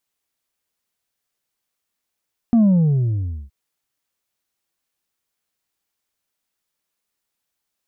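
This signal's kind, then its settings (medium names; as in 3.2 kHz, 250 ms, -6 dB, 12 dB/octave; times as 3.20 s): sub drop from 240 Hz, over 0.97 s, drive 3 dB, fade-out 0.88 s, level -11 dB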